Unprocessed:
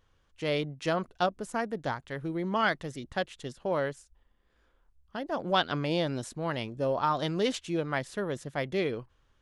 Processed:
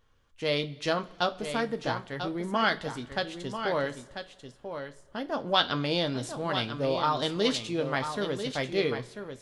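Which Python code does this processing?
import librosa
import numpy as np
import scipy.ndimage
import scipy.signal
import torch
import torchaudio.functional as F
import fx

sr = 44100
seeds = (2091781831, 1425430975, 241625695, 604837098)

y = fx.dynamic_eq(x, sr, hz=4100.0, q=1.7, threshold_db=-52.0, ratio=4.0, max_db=8)
y = y + 10.0 ** (-8.5 / 20.0) * np.pad(y, (int(992 * sr / 1000.0), 0))[:len(y)]
y = fx.rev_double_slope(y, sr, seeds[0], early_s=0.22, late_s=2.0, knee_db=-22, drr_db=6.5)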